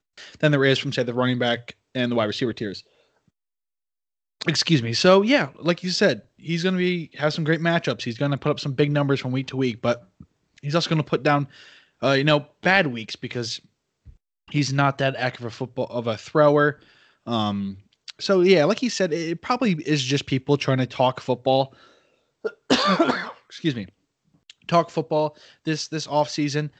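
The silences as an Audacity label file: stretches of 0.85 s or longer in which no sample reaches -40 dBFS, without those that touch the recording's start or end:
2.800000	4.410000	silence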